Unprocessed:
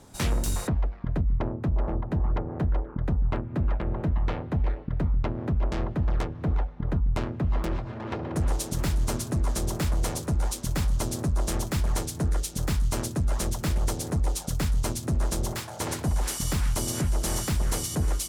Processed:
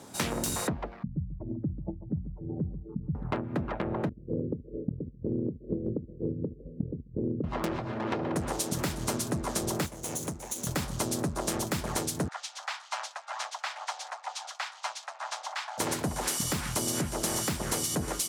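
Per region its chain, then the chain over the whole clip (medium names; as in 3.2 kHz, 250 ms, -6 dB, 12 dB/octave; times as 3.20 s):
1.03–3.15 s: spectral contrast enhancement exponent 3 + hum notches 60/120/180/240 Hz + feedback delay 140 ms, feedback 25%, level -13.5 dB
4.09–7.44 s: steep low-pass 510 Hz 72 dB/octave + compressor with a negative ratio -29 dBFS, ratio -0.5
9.86–10.67 s: comb filter that takes the minimum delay 0.3 ms + resonant high shelf 4.9 kHz +6 dB, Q 1.5 + compression 12:1, threshold -32 dBFS
12.28–15.78 s: steep high-pass 720 Hz 48 dB/octave + distance through air 140 m
whole clip: high-pass 160 Hz 12 dB/octave; compression, threshold -31 dBFS; trim +4.5 dB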